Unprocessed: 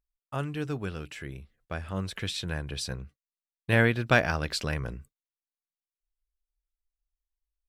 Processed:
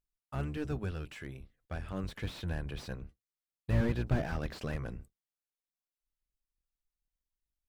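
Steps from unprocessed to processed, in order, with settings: octave divider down 1 oct, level -2 dB; slew-rate limiter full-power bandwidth 29 Hz; trim -4.5 dB

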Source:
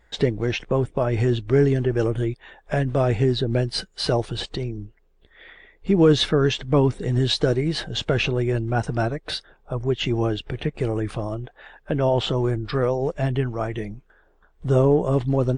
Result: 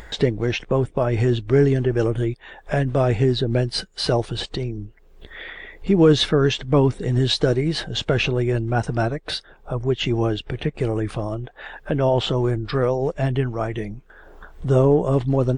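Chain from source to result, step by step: upward compressor, threshold -28 dBFS; trim +1.5 dB

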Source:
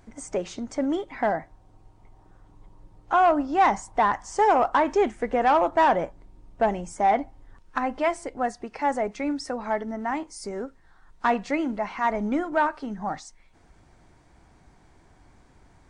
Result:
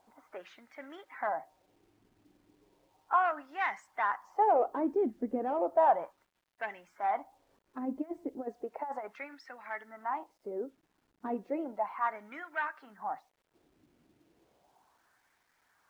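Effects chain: coarse spectral quantiser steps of 15 dB; level-controlled noise filter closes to 1.8 kHz, open at -21 dBFS; 7.85–9.35 s: compressor with a negative ratio -27 dBFS, ratio -0.5; wah-wah 0.34 Hz 270–2000 Hz, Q 2.4; bit crusher 12-bit; trim -1.5 dB

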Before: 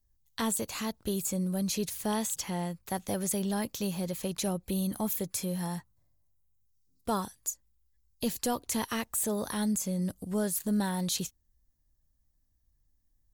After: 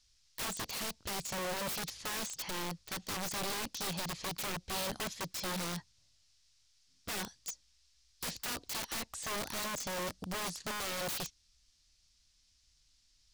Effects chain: added noise violet -58 dBFS; four-pole ladder low-pass 6 kHz, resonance 45%; integer overflow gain 38.5 dB; trim +6 dB

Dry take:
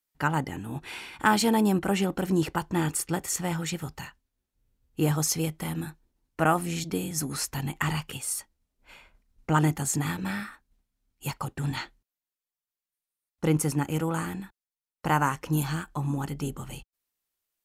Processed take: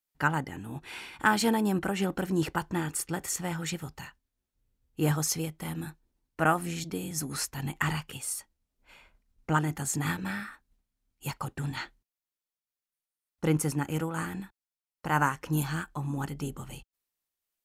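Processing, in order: dynamic bell 1.6 kHz, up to +4 dB, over -44 dBFS, Q 2.4; random flutter of the level, depth 60%

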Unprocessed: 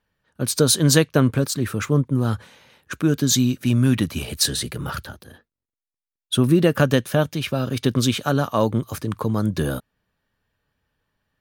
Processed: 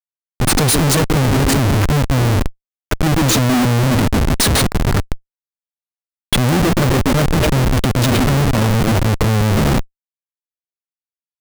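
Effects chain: graphic EQ with 31 bands 100 Hz +11 dB, 200 Hz +5 dB, 10 kHz +9 dB; repeats whose band climbs or falls 132 ms, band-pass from 270 Hz, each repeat 0.7 oct, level -4 dB; Schmitt trigger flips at -21.5 dBFS; trim +6 dB

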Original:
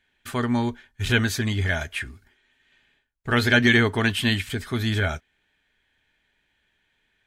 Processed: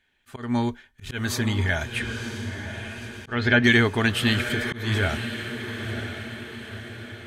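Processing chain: echo that smears into a reverb 983 ms, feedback 52%, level -9 dB; 1.98–3.64 s: low-pass that closes with the level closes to 2.7 kHz, closed at -15.5 dBFS; slow attack 206 ms

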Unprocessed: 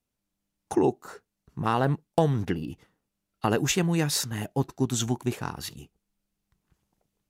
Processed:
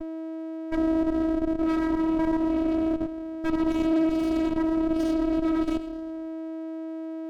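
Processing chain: simulated room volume 580 m³, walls mixed, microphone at 5.7 m; in parallel at +2 dB: compression 16:1, threshold -18 dBFS, peak gain reduction 15.5 dB; on the sum: transient shaper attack +5 dB, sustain -2 dB; rotary cabinet horn 8 Hz; whistle 400 Hz -24 dBFS; vocoder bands 8, saw 322 Hz; level held to a coarse grid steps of 10 dB; peaking EQ 140 Hz +10 dB 0.98 oct; peak limiter -12.5 dBFS, peak gain reduction 11 dB; sliding maximum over 33 samples; trim -3.5 dB

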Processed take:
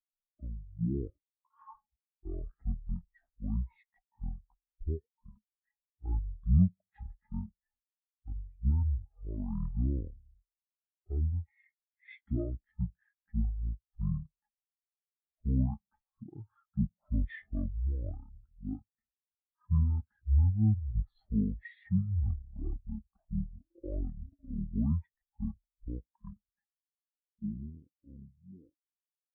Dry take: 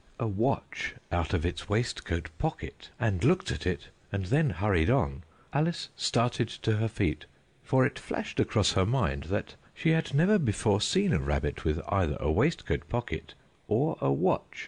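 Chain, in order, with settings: fade out at the end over 1.21 s; speed mistake 15 ips tape played at 7.5 ips; spectral contrast expander 2.5:1; trim +1.5 dB

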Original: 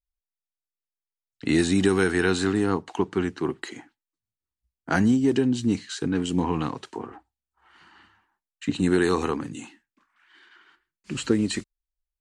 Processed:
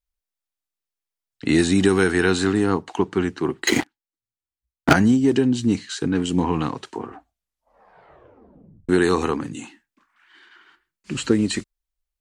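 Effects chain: 3.67–4.93 s: waveshaping leveller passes 5; 7.08 s: tape stop 1.81 s; trim +3.5 dB

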